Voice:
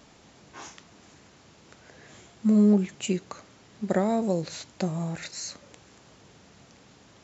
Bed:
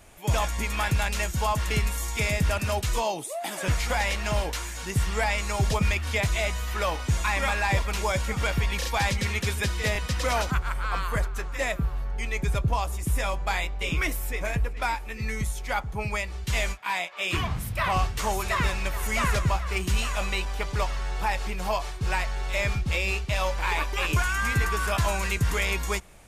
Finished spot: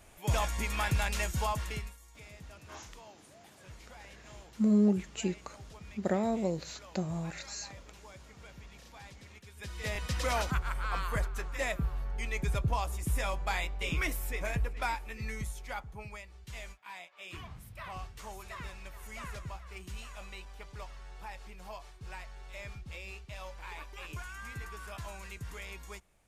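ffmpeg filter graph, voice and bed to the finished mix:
ffmpeg -i stem1.wav -i stem2.wav -filter_complex "[0:a]adelay=2150,volume=-5.5dB[link_01];[1:a]volume=15.5dB,afade=type=out:start_time=1.37:duration=0.6:silence=0.0891251,afade=type=in:start_time=9.53:duration=0.62:silence=0.0944061,afade=type=out:start_time=14.83:duration=1.4:silence=0.237137[link_02];[link_01][link_02]amix=inputs=2:normalize=0" out.wav

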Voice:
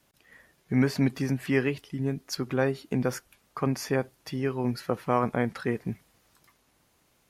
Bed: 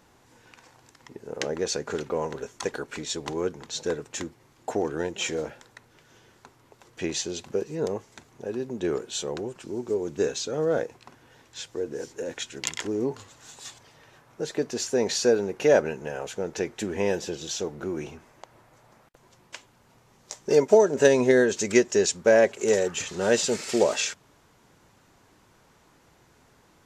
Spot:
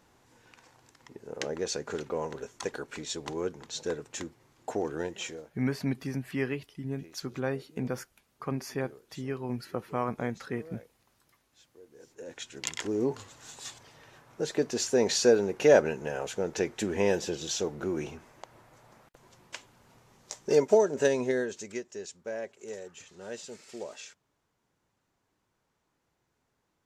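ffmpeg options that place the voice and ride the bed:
ffmpeg -i stem1.wav -i stem2.wav -filter_complex "[0:a]adelay=4850,volume=-6dB[link_01];[1:a]volume=18.5dB,afade=type=out:start_time=5.06:duration=0.44:silence=0.112202,afade=type=in:start_time=11.93:duration=1.19:silence=0.0707946,afade=type=out:start_time=19.95:duration=1.86:silence=0.125893[link_02];[link_01][link_02]amix=inputs=2:normalize=0" out.wav

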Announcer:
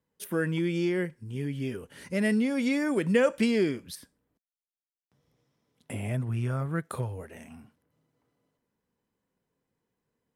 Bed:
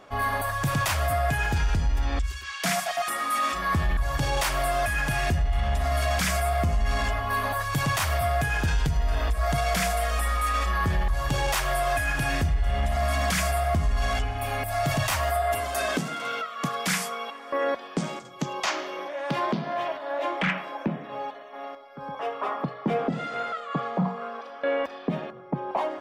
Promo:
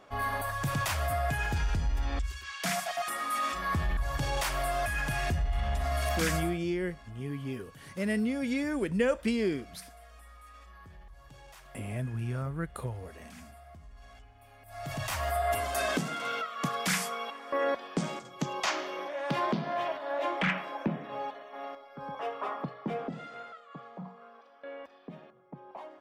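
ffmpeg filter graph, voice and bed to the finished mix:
ffmpeg -i stem1.wav -i stem2.wav -filter_complex "[0:a]adelay=5850,volume=-4dB[link_01];[1:a]volume=18.5dB,afade=type=out:start_time=6.36:duration=0.23:silence=0.0841395,afade=type=in:start_time=14.62:duration=0.92:silence=0.0630957,afade=type=out:start_time=21.89:duration=1.74:silence=0.188365[link_02];[link_01][link_02]amix=inputs=2:normalize=0" out.wav

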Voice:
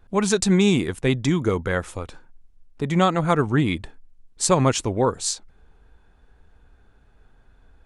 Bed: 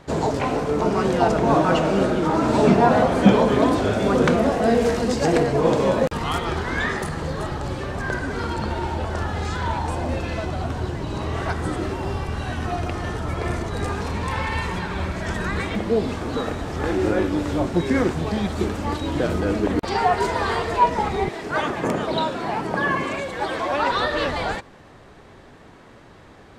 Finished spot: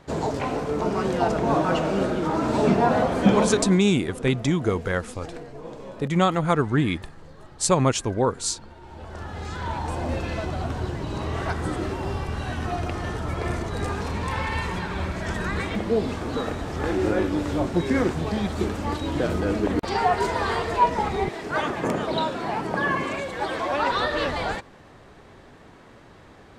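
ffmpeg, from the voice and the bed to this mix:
ffmpeg -i stem1.wav -i stem2.wav -filter_complex "[0:a]adelay=3200,volume=-1.5dB[link_01];[1:a]volume=14dB,afade=type=out:start_time=3.4:duration=0.4:silence=0.158489,afade=type=in:start_time=8.82:duration=1.29:silence=0.125893[link_02];[link_01][link_02]amix=inputs=2:normalize=0" out.wav

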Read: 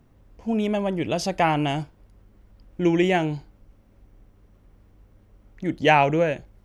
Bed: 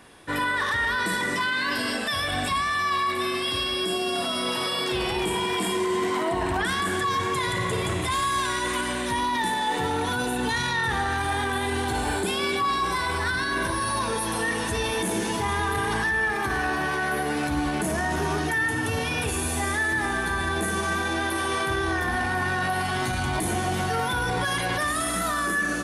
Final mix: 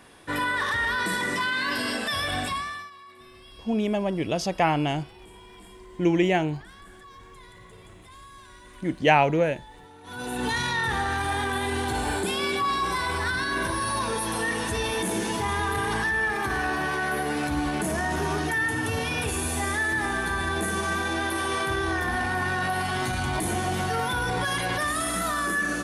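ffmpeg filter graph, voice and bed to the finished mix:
ffmpeg -i stem1.wav -i stem2.wav -filter_complex "[0:a]adelay=3200,volume=-1.5dB[link_01];[1:a]volume=21dB,afade=type=out:start_time=2.35:duration=0.56:silence=0.0794328,afade=type=in:start_time=10.03:duration=0.44:silence=0.0794328[link_02];[link_01][link_02]amix=inputs=2:normalize=0" out.wav

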